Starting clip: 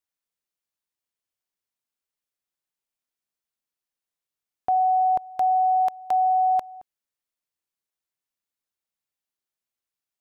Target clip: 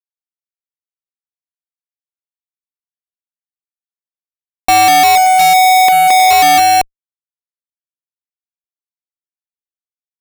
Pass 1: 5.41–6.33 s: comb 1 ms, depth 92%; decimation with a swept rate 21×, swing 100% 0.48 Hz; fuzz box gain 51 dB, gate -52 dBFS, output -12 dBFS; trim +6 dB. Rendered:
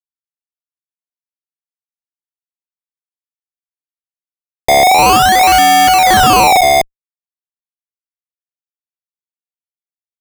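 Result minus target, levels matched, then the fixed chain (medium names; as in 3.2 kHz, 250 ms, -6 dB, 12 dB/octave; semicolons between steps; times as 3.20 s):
decimation with a swept rate: distortion +15 dB
5.41–6.33 s: comb 1 ms, depth 92%; decimation with a swept rate 6×, swing 100% 0.48 Hz; fuzz box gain 51 dB, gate -52 dBFS, output -12 dBFS; trim +6 dB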